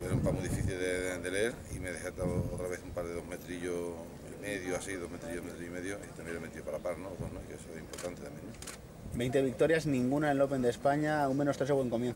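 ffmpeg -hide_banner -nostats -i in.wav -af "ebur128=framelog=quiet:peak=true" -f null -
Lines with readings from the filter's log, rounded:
Integrated loudness:
  I:         -34.5 LUFS
  Threshold: -44.8 LUFS
Loudness range:
  LRA:        10.3 LU
  Threshold: -56.0 LUFS
  LRA low:   -41.6 LUFS
  LRA high:  -31.2 LUFS
True peak:
  Peak:      -16.7 dBFS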